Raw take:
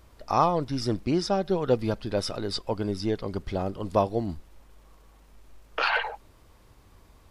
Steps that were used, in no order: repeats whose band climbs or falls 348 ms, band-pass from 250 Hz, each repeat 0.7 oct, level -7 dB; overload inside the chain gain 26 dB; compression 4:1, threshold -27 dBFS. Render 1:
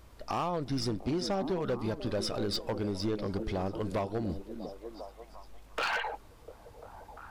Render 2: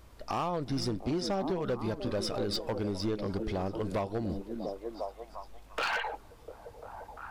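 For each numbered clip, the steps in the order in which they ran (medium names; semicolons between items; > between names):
compression > repeats whose band climbs or falls > overload inside the chain; repeats whose band climbs or falls > compression > overload inside the chain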